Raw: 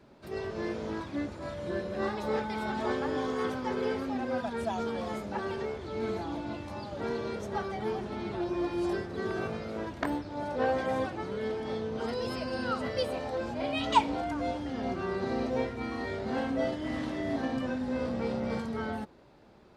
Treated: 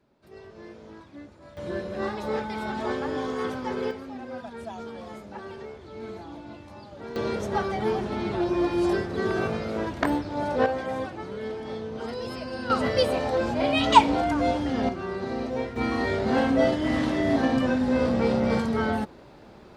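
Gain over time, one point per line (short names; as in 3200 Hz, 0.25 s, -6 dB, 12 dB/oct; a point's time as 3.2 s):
-10 dB
from 1.57 s +2 dB
from 3.91 s -5 dB
from 7.16 s +7 dB
from 10.66 s 0 dB
from 12.7 s +8.5 dB
from 14.89 s +1 dB
from 15.76 s +9 dB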